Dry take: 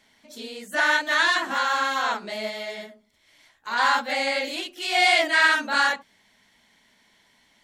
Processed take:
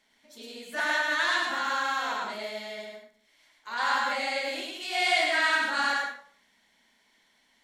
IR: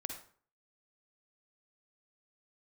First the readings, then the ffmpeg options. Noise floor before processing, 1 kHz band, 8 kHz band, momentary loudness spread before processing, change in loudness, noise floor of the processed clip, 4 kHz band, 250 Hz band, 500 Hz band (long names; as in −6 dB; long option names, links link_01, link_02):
−63 dBFS, −5.0 dB, −5.0 dB, 16 LU, −5.0 dB, −67 dBFS, −5.0 dB, −5.5 dB, −5.0 dB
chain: -filter_complex "[0:a]equalizer=frequency=90:width_type=o:width=1.7:gain=-9.5,asplit=2[link_01][link_02];[1:a]atrim=start_sample=2205,asetrate=41895,aresample=44100,adelay=104[link_03];[link_02][link_03]afir=irnorm=-1:irlink=0,volume=0dB[link_04];[link_01][link_04]amix=inputs=2:normalize=0,volume=-7.5dB"